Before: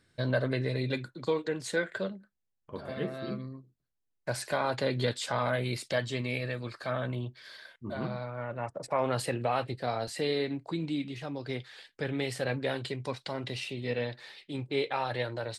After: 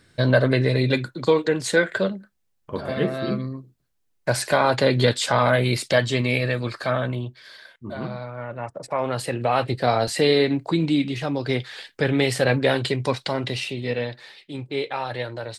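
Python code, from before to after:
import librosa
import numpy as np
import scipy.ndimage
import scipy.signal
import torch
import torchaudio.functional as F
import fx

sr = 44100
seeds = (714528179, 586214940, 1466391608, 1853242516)

y = fx.gain(x, sr, db=fx.line((6.79, 11.0), (7.42, 4.0), (9.23, 4.0), (9.78, 12.0), (13.14, 12.0), (14.36, 3.5)))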